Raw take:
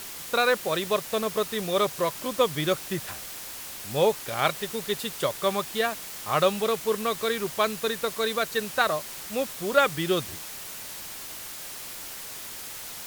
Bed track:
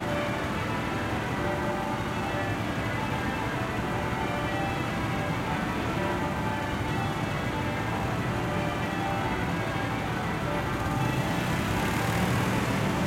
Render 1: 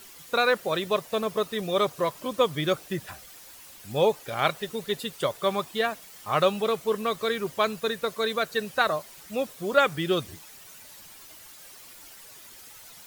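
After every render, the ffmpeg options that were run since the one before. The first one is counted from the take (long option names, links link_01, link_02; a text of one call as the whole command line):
ffmpeg -i in.wav -af "afftdn=noise_reduction=11:noise_floor=-39" out.wav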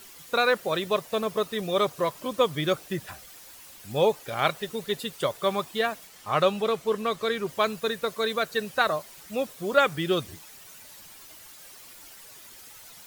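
ffmpeg -i in.wav -filter_complex "[0:a]asettb=1/sr,asplit=3[link_01][link_02][link_03];[link_01]atrim=end=6.074[link_04];[link_02]atrim=start=6.07:end=7.49,asetpts=PTS-STARTPTS,afade=type=in:duration=0.004:curve=qsin,afade=type=out:start_time=1.416:duration=0.004:curve=qsin,highshelf=frequency=11000:gain=-8[link_05];[link_03]atrim=start=7.486[link_06];[link_04][link_05]acrossfade=duration=0.004:curve1=hsin:curve2=qsin[link_07];[link_07][link_06]acrossfade=duration=0.004:curve1=qsin:curve2=hsin" out.wav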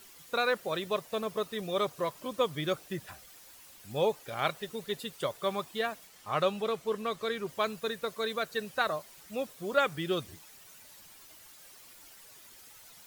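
ffmpeg -i in.wav -af "volume=-6dB" out.wav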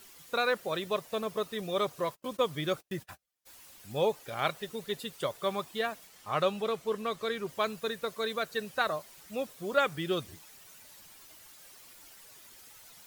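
ffmpeg -i in.wav -filter_complex "[0:a]asplit=3[link_01][link_02][link_03];[link_01]afade=type=out:start_time=2.06:duration=0.02[link_04];[link_02]agate=range=-34dB:threshold=-48dB:ratio=16:release=100:detection=peak,afade=type=in:start_time=2.06:duration=0.02,afade=type=out:start_time=3.45:duration=0.02[link_05];[link_03]afade=type=in:start_time=3.45:duration=0.02[link_06];[link_04][link_05][link_06]amix=inputs=3:normalize=0" out.wav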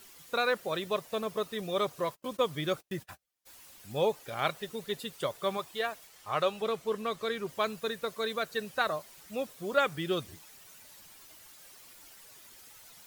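ffmpeg -i in.wav -filter_complex "[0:a]asettb=1/sr,asplit=3[link_01][link_02][link_03];[link_01]atrim=end=5.574[link_04];[link_02]atrim=start=5.57:end=6.62,asetpts=PTS-STARTPTS,afade=type=in:duration=0.004:curve=qsin,afade=type=out:start_time=1.046:duration=0.004:curve=qsin,equalizer=frequency=210:width=1.5:gain=-7.5[link_05];[link_03]atrim=start=6.616[link_06];[link_04][link_05]acrossfade=duration=0.004:curve1=hsin:curve2=qsin[link_07];[link_07][link_06]acrossfade=duration=0.004:curve1=qsin:curve2=hsin" out.wav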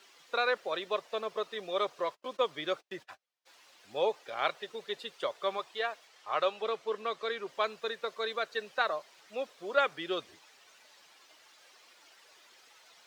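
ffmpeg -i in.wav -filter_complex "[0:a]highpass=58,acrossover=split=330 6000:gain=0.0891 1 0.0891[link_01][link_02][link_03];[link_01][link_02][link_03]amix=inputs=3:normalize=0" out.wav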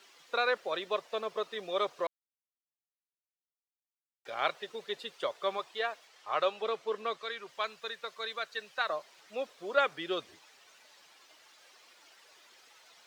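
ffmpeg -i in.wav -filter_complex "[0:a]asettb=1/sr,asplit=3[link_01][link_02][link_03];[link_01]atrim=end=7.174[link_04];[link_02]atrim=start=7.17:end=8.9,asetpts=PTS-STARTPTS,afade=type=in:duration=0.004:curve=qsin,afade=type=out:start_time=1.726:duration=0.004:curve=qsin,equalizer=frequency=330:width=0.48:gain=-9[link_05];[link_03]atrim=start=8.896[link_06];[link_04][link_05]acrossfade=duration=0.004:curve1=hsin:curve2=qsin[link_07];[link_07][link_06]acrossfade=duration=0.004:curve1=qsin:curve2=hsin,asplit=3[link_08][link_09][link_10];[link_08]atrim=end=2.07,asetpts=PTS-STARTPTS,afade=type=out:start_time=2.066:duration=0.004:curve=hsin[link_11];[link_09]atrim=start=2.07:end=4.25,asetpts=PTS-STARTPTS,volume=0[link_12];[link_10]atrim=start=4.25,asetpts=PTS-STARTPTS,afade=type=in:duration=0.004:curve=hsin[link_13];[link_11][link_12][link_13]concat=n=3:v=0:a=1" out.wav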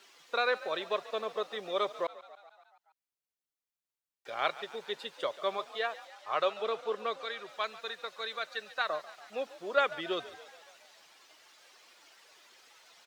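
ffmpeg -i in.wav -filter_complex "[0:a]asplit=7[link_01][link_02][link_03][link_04][link_05][link_06][link_07];[link_02]adelay=142,afreqshift=47,volume=-17dB[link_08];[link_03]adelay=284,afreqshift=94,volume=-20.9dB[link_09];[link_04]adelay=426,afreqshift=141,volume=-24.8dB[link_10];[link_05]adelay=568,afreqshift=188,volume=-28.6dB[link_11];[link_06]adelay=710,afreqshift=235,volume=-32.5dB[link_12];[link_07]adelay=852,afreqshift=282,volume=-36.4dB[link_13];[link_01][link_08][link_09][link_10][link_11][link_12][link_13]amix=inputs=7:normalize=0" out.wav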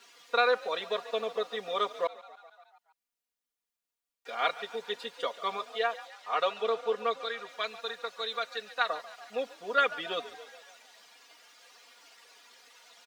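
ffmpeg -i in.wav -af "equalizer=frequency=130:width=1.2:gain=-5.5,aecho=1:1:4.2:0.89" out.wav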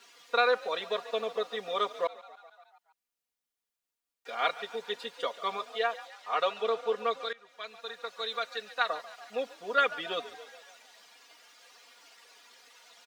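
ffmpeg -i in.wav -filter_complex "[0:a]asplit=2[link_01][link_02];[link_01]atrim=end=7.33,asetpts=PTS-STARTPTS,afade=type=out:start_time=7.326:duration=0.004:curve=hsin:silence=0.112202[link_03];[link_02]atrim=start=7.33,asetpts=PTS-STARTPTS,afade=type=in:duration=0.93:silence=0.112202[link_04];[link_03][link_04]concat=n=2:v=0:a=1" out.wav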